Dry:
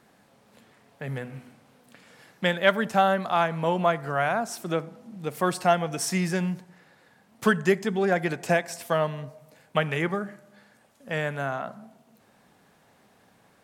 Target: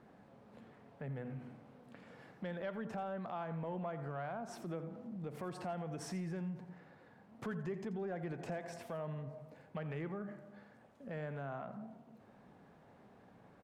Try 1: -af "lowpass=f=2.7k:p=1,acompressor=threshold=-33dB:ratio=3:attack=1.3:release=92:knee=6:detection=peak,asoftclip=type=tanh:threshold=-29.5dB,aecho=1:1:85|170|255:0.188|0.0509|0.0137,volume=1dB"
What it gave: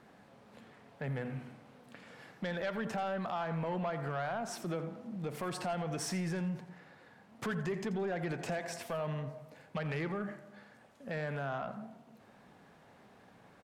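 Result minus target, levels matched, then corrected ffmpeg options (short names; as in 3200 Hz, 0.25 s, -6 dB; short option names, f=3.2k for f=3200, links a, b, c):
compressor: peak gain reduction -5 dB; 2000 Hz band +3.5 dB
-af "lowpass=f=790:p=1,acompressor=threshold=-43dB:ratio=3:attack=1.3:release=92:knee=6:detection=peak,asoftclip=type=tanh:threshold=-29.5dB,aecho=1:1:85|170|255:0.188|0.0509|0.0137,volume=1dB"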